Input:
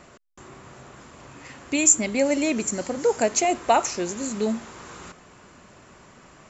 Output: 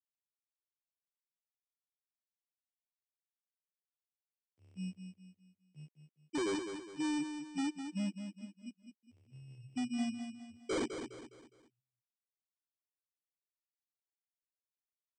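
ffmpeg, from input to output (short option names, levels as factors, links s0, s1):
-af "areverse,afftfilt=real='re*gte(hypot(re,im),0.631)':imag='im*gte(hypot(re,im),0.631)':win_size=1024:overlap=0.75,highpass=f=780:w=0.5412,highpass=f=780:w=1.3066,acompressor=threshold=0.01:ratio=2.5,acrusher=samples=7:mix=1:aa=0.000001,asoftclip=type=hard:threshold=0.0106,aecho=1:1:88|176|264|352:0.398|0.155|0.0606|0.0236,asetrate=18846,aresample=44100,volume=2.24"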